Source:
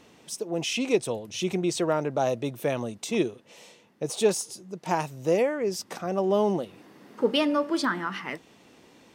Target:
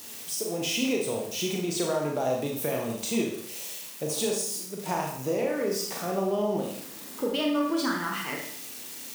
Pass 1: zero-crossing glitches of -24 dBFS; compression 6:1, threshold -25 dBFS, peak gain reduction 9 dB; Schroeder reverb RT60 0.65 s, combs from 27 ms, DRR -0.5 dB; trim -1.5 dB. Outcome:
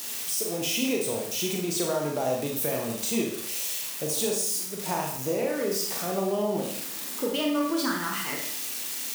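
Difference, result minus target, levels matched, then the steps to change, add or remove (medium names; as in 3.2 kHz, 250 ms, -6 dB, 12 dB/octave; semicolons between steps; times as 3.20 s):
zero-crossing glitches: distortion +8 dB
change: zero-crossing glitches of -32 dBFS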